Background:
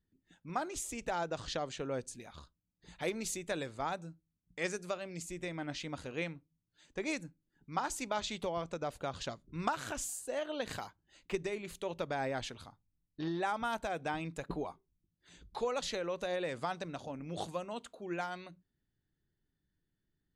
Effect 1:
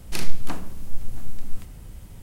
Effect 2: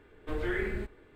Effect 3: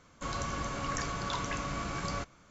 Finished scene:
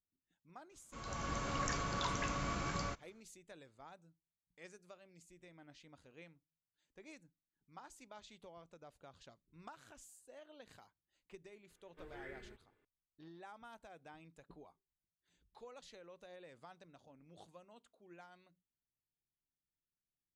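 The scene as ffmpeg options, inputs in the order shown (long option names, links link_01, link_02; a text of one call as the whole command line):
ffmpeg -i bed.wav -i cue0.wav -i cue1.wav -i cue2.wav -filter_complex "[0:a]volume=-19.5dB[link_01];[3:a]dynaudnorm=framelen=100:gausssize=9:maxgain=14dB[link_02];[2:a]lowshelf=frequency=270:gain=-7.5[link_03];[link_02]atrim=end=2.5,asetpts=PTS-STARTPTS,volume=-17dB,afade=type=in:duration=0.004:curve=hsin,afade=type=out:start_time=2.496:duration=0.004:curve=hsin,adelay=710[link_04];[link_03]atrim=end=1.15,asetpts=PTS-STARTPTS,volume=-17.5dB,afade=type=in:duration=0.004:curve=hsin,afade=type=out:start_time=1.146:duration=0.004:curve=hsin,adelay=515970S[link_05];[link_01][link_04][link_05]amix=inputs=3:normalize=0" out.wav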